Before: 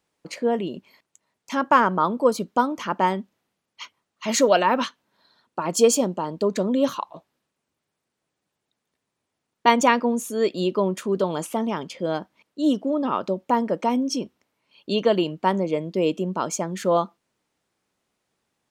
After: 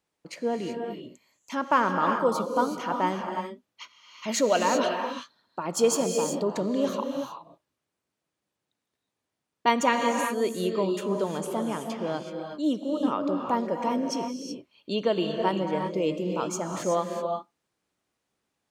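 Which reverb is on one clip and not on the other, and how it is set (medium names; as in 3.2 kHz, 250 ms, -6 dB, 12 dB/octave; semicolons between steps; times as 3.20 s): gated-style reverb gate 400 ms rising, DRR 3.5 dB; trim -5.5 dB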